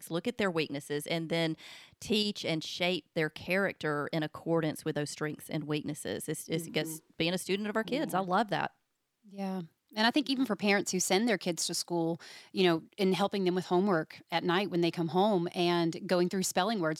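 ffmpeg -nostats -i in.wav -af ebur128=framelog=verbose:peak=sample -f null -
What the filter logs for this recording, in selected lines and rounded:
Integrated loudness:
  I:         -31.5 LUFS
  Threshold: -41.6 LUFS
Loudness range:
  LRA:         4.4 LU
  Threshold: -51.8 LUFS
  LRA low:   -34.3 LUFS
  LRA high:  -29.9 LUFS
Sample peak:
  Peak:      -11.6 dBFS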